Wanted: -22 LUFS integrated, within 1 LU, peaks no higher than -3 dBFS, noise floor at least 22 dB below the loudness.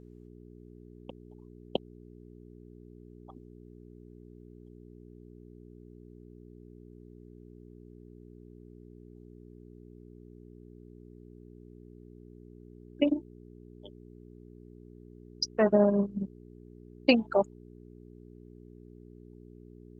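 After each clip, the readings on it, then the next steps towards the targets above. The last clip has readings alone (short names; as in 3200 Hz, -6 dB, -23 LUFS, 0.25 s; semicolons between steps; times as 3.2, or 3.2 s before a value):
hum 60 Hz; harmonics up to 420 Hz; hum level -48 dBFS; loudness -28.5 LUFS; peak -8.5 dBFS; loudness target -22.0 LUFS
-> de-hum 60 Hz, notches 7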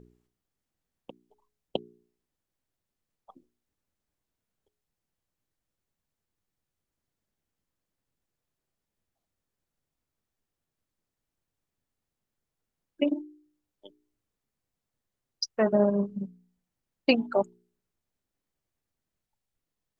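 hum none; loudness -28.5 LUFS; peak -8.0 dBFS; loudness target -22.0 LUFS
-> gain +6.5 dB; limiter -3 dBFS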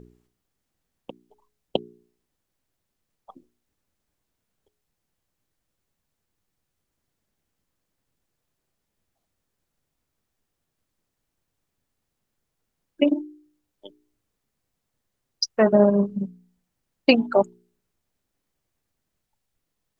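loudness -22.5 LUFS; peak -3.0 dBFS; noise floor -80 dBFS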